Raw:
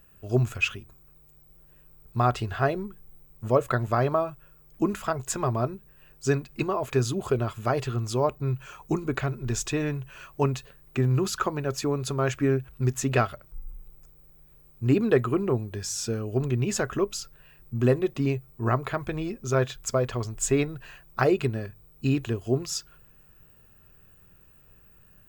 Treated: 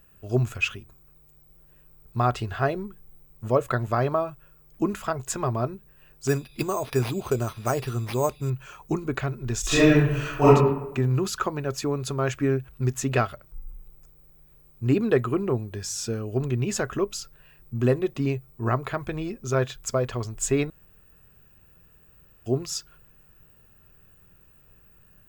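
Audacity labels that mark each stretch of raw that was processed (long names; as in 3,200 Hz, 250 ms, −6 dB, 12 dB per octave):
6.270000	8.500000	bad sample-rate conversion rate divided by 6×, down none, up hold
9.610000	10.480000	thrown reverb, RT60 0.86 s, DRR −12 dB
20.700000	22.460000	fill with room tone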